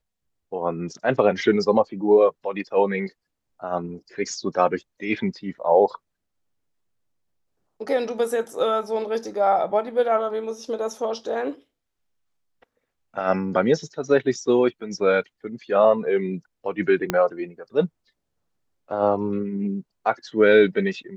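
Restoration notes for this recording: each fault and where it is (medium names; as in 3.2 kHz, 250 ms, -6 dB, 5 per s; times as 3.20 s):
17.10 s: pop -7 dBFS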